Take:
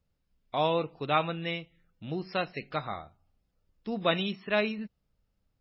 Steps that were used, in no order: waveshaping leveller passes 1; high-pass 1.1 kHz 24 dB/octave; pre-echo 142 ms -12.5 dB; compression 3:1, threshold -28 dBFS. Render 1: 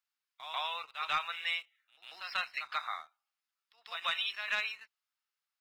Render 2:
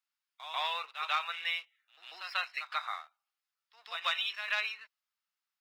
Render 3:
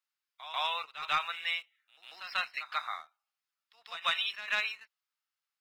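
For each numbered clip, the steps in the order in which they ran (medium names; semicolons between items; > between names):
pre-echo > compression > high-pass > waveshaping leveller; pre-echo > waveshaping leveller > high-pass > compression; high-pass > compression > waveshaping leveller > pre-echo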